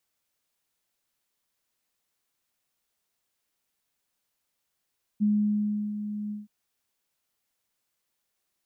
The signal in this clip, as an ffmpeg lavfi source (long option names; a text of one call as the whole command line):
ffmpeg -f lavfi -i "aevalsrc='0.106*sin(2*PI*209*t)':duration=1.273:sample_rate=44100,afade=type=in:duration=0.026,afade=type=out:start_time=0.026:duration=0.707:silence=0.299,afade=type=out:start_time=1.11:duration=0.163" out.wav